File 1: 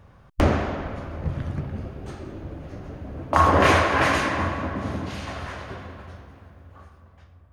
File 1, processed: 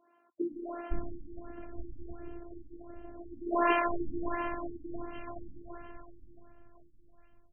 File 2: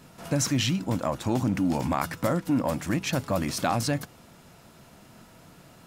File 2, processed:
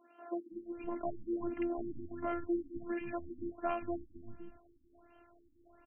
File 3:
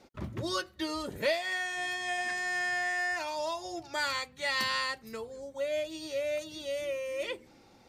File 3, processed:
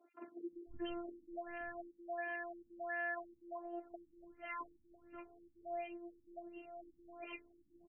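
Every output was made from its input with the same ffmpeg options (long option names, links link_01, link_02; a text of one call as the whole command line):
ffmpeg -i in.wav -filter_complex "[0:a]afftfilt=real='hypot(re,im)*cos(PI*b)':imag='0':win_size=512:overlap=0.75,acrossover=split=240|1700[link_01][link_02][link_03];[link_03]adelay=50[link_04];[link_01]adelay=520[link_05];[link_05][link_02][link_04]amix=inputs=3:normalize=0,afftfilt=real='re*lt(b*sr/1024,320*pow(3200/320,0.5+0.5*sin(2*PI*1.4*pts/sr)))':imag='im*lt(b*sr/1024,320*pow(3200/320,0.5+0.5*sin(2*PI*1.4*pts/sr)))':win_size=1024:overlap=0.75,volume=-4.5dB" out.wav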